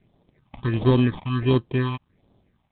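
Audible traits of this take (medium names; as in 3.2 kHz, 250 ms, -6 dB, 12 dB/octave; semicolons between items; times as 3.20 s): aliases and images of a low sample rate 1.4 kHz, jitter 0%; tremolo triangle 1.4 Hz, depth 55%; phasing stages 6, 1.4 Hz, lowest notch 420–2100 Hz; G.726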